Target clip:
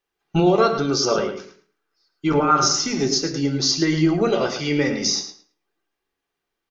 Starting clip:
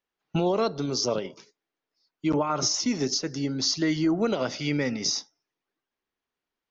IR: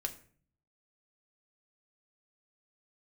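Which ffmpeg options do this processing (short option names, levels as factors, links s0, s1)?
-filter_complex "[0:a]asettb=1/sr,asplit=3[s0][s1][s2];[s0]atrim=end=0.604[s3];[s1]atrim=start=0.6:end=2.9,asetpts=PTS-STARTPTS,afade=t=in:d=0.004:c=qsin,afade=t=out:st=2.296:d=0.004:c=qsin,equalizer=f=1400:t=o:w=0.42:g=11.5[s4];[s2]atrim=start=2.896[s5];[s3][s4]acrossfade=d=0.004:c1=hsin:c2=qsin[s6];[s6][s5]acrossfade=d=0.004:c1=qsin:c2=hsin,asplit=2[s7][s8];[s8]adelay=109,lowpass=f=5000:p=1,volume=0.355,asplit=2[s9][s10];[s10]adelay=109,lowpass=f=5000:p=1,volume=0.2,asplit=2[s11][s12];[s12]adelay=109,lowpass=f=5000:p=1,volume=0.2[s13];[s7][s9][s11][s13]amix=inputs=4:normalize=0[s14];[1:a]atrim=start_sample=2205,atrim=end_sample=6174[s15];[s14][s15]afir=irnorm=-1:irlink=0,volume=1.88"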